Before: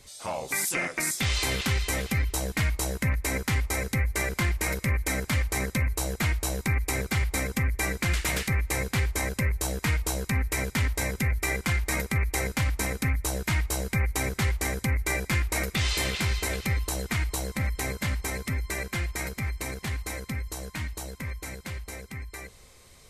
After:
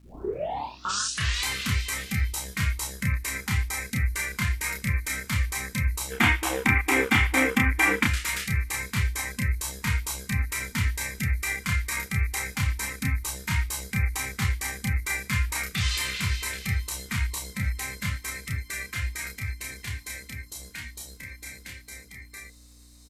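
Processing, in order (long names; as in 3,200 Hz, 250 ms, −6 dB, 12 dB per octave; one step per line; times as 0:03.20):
turntable start at the beginning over 1.46 s
gain on a spectral selection 0:06.11–0:08.04, 210–3,700 Hz +10 dB
mains hum 60 Hz, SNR 15 dB
noise reduction from a noise print of the clip's start 12 dB
surface crackle 420 per second −56 dBFS
double-tracking delay 30 ms −3 dB
level −1.5 dB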